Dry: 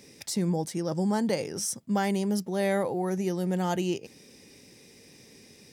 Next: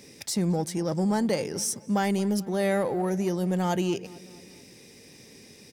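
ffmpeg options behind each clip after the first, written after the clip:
-filter_complex "[0:a]asplit=2[a][b];[b]asoftclip=type=hard:threshold=-29.5dB,volume=-8.5dB[c];[a][c]amix=inputs=2:normalize=0,asplit=2[d][e];[e]adelay=220,lowpass=f=2.7k:p=1,volume=-19.5dB,asplit=2[f][g];[g]adelay=220,lowpass=f=2.7k:p=1,volume=0.55,asplit=2[h][i];[i]adelay=220,lowpass=f=2.7k:p=1,volume=0.55,asplit=2[j][k];[k]adelay=220,lowpass=f=2.7k:p=1,volume=0.55[l];[d][f][h][j][l]amix=inputs=5:normalize=0"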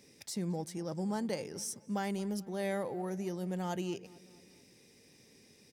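-af "aeval=exprs='0.211*(cos(1*acos(clip(val(0)/0.211,-1,1)))-cos(1*PI/2))+0.0237*(cos(3*acos(clip(val(0)/0.211,-1,1)))-cos(3*PI/2))':c=same,volume=-7.5dB"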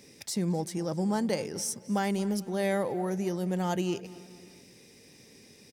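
-af "aecho=1:1:264|528|792:0.0794|0.0318|0.0127,volume=6.5dB"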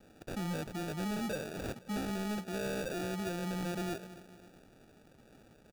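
-af "acrusher=samples=42:mix=1:aa=0.000001,asoftclip=type=hard:threshold=-28dB,volume=-5dB"

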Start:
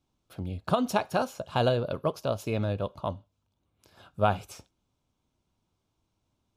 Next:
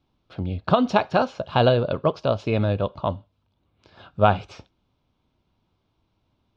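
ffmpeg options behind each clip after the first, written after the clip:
-af "lowpass=f=4.5k:w=0.5412,lowpass=f=4.5k:w=1.3066,volume=7dB"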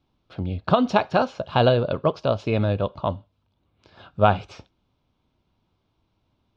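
-af anull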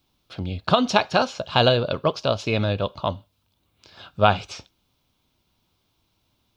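-af "crystalizer=i=5.5:c=0,volume=-1.5dB"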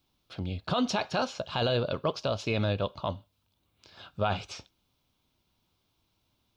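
-af "alimiter=limit=-13dB:level=0:latency=1:release=11,volume=-5dB"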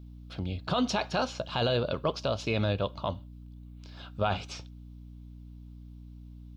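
-af "aeval=exprs='val(0)+0.00562*(sin(2*PI*60*n/s)+sin(2*PI*2*60*n/s)/2+sin(2*PI*3*60*n/s)/3+sin(2*PI*4*60*n/s)/4+sin(2*PI*5*60*n/s)/5)':c=same"

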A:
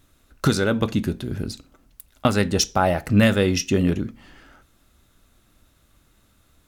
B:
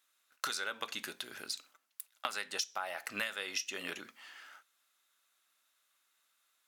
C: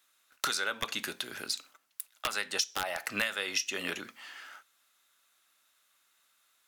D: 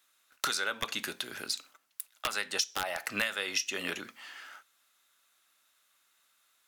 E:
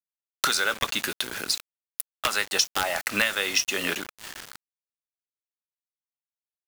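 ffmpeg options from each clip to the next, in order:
-af "agate=range=-10dB:threshold=-51dB:ratio=16:detection=peak,highpass=1.2k,acompressor=threshold=-33dB:ratio=12"
-filter_complex "[0:a]lowshelf=f=110:g=7.5,acrossover=split=160|1700[a][b][c];[b]aeval=exprs='(mod(26.6*val(0)+1,2)-1)/26.6':c=same[d];[a][d][c]amix=inputs=3:normalize=0,volume=5.5dB"
-af anull
-af "acrusher=bits=6:mix=0:aa=0.000001,volume=7.5dB"

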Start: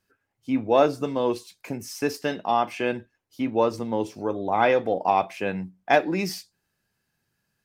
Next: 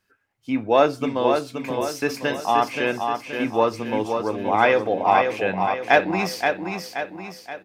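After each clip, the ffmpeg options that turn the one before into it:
-filter_complex "[0:a]equalizer=f=1.9k:w=0.52:g=5.5,asplit=2[a][b];[b]aecho=0:1:526|1052|1578|2104|2630|3156:0.531|0.25|0.117|0.0551|0.0259|0.0122[c];[a][c]amix=inputs=2:normalize=0"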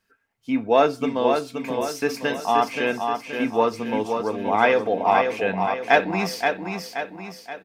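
-af "aecho=1:1:4.4:0.36,volume=-1dB"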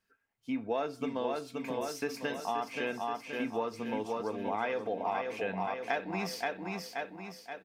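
-af "acompressor=threshold=-22dB:ratio=4,volume=-8dB"

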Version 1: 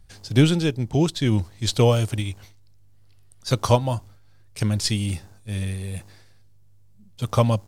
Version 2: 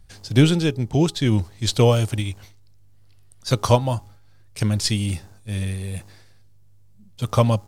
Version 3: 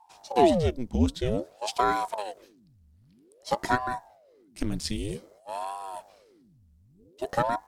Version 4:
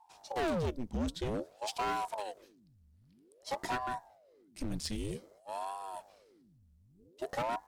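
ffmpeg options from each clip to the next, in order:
-af "bandreject=f=412:t=h:w=4,bandreject=f=824:t=h:w=4,bandreject=f=1.236k:t=h:w=4,volume=1.5dB"
-af "equalizer=f=160:t=o:w=0.39:g=10,aeval=exprs='val(0)*sin(2*PI*480*n/s+480*0.85/0.52*sin(2*PI*0.52*n/s))':c=same,volume=-7.5dB"
-af "asoftclip=type=hard:threshold=-24.5dB,volume=-5dB"

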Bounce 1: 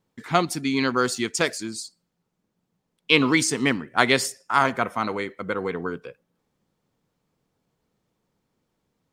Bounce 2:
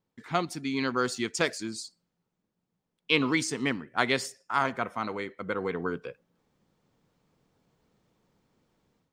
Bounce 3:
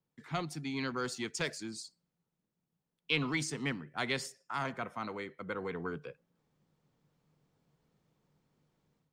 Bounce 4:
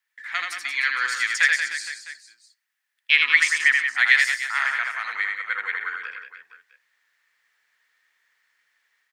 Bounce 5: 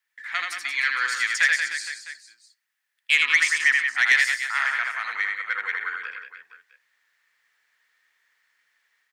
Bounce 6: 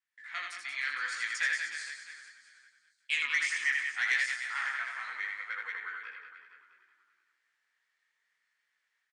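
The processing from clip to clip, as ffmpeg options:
-af "equalizer=f=12k:w=0.84:g=-7,dynaudnorm=f=640:g=3:m=11.5dB,volume=-7.5dB"
-filter_complex "[0:a]equalizer=f=150:w=6.7:g=10,acrossover=split=140|890|1800[a][b][c][d];[b]asoftclip=type=tanh:threshold=-26.5dB[e];[c]alimiter=level_in=2.5dB:limit=-24dB:level=0:latency=1,volume=-2.5dB[f];[a][e][f][d]amix=inputs=4:normalize=0,volume=-6dB"
-filter_complex "[0:a]highpass=f=1.8k:t=q:w=6.9,asplit=2[a][b];[b]aecho=0:1:80|180|305|461.2|656.6:0.631|0.398|0.251|0.158|0.1[c];[a][c]amix=inputs=2:normalize=0,volume=8dB"
-af "asoftclip=type=tanh:threshold=-8.5dB"
-filter_complex "[0:a]aresample=22050,aresample=44100,flanger=delay=16:depth=7.4:speed=0.69,asplit=4[a][b][c][d];[b]adelay=377,afreqshift=-39,volume=-15dB[e];[c]adelay=754,afreqshift=-78,volume=-23.6dB[f];[d]adelay=1131,afreqshift=-117,volume=-32.3dB[g];[a][e][f][g]amix=inputs=4:normalize=0,volume=-7.5dB"

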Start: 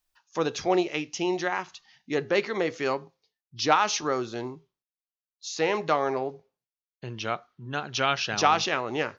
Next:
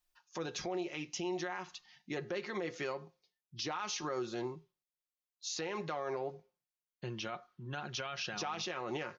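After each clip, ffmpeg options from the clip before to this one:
-af "aecho=1:1:5.6:0.5,acompressor=threshold=-29dB:ratio=2,alimiter=level_in=0.5dB:limit=-24dB:level=0:latency=1:release=47,volume=-0.5dB,volume=-4.5dB"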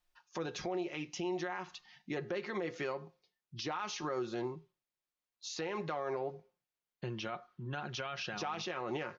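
-filter_complex "[0:a]asplit=2[a][b];[b]acompressor=threshold=-45dB:ratio=6,volume=-2dB[c];[a][c]amix=inputs=2:normalize=0,highshelf=f=5.3k:g=-10.5,volume=-1dB"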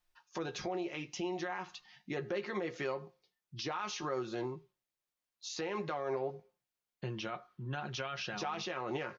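-filter_complex "[0:a]asplit=2[a][b];[b]adelay=15,volume=-10.5dB[c];[a][c]amix=inputs=2:normalize=0"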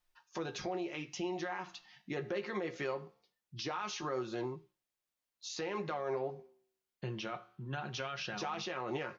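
-af "flanger=delay=7.7:depth=6.7:regen=-85:speed=0.22:shape=sinusoidal,volume=4dB"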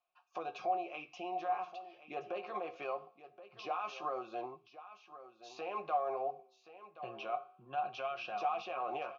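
-filter_complex "[0:a]asplit=3[a][b][c];[a]bandpass=f=730:t=q:w=8,volume=0dB[d];[b]bandpass=f=1.09k:t=q:w=8,volume=-6dB[e];[c]bandpass=f=2.44k:t=q:w=8,volume=-9dB[f];[d][e][f]amix=inputs=3:normalize=0,aecho=1:1:1075:0.188,volume=10.5dB"

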